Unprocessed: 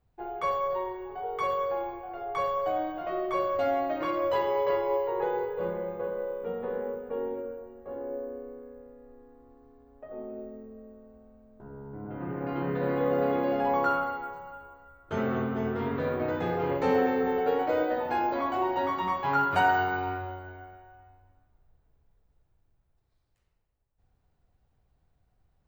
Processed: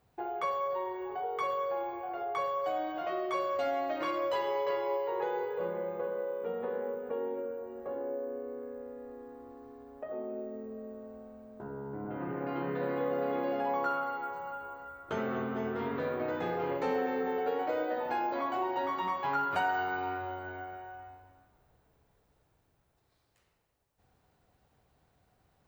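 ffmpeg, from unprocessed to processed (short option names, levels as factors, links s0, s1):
-filter_complex "[0:a]asettb=1/sr,asplit=3[s0][s1][s2];[s0]atrim=end=2.644[s3];[s1]atrim=start=2.64:end=5.58,asetpts=PTS-STARTPTS,afade=t=in:d=0.004:c=qsin,afade=t=out:st=2.936:d=0.004:c=qsin,equalizer=f=7000:w=0.36:g=6.5[s4];[s2]atrim=start=5.576[s5];[s3][s4]acrossfade=d=0.004:c1=hsin:c2=qsin[s6];[s6][s5]acrossfade=d=0.004:c1=qsin:c2=hsin,highpass=f=240:p=1,acompressor=threshold=0.00355:ratio=2,volume=2.66"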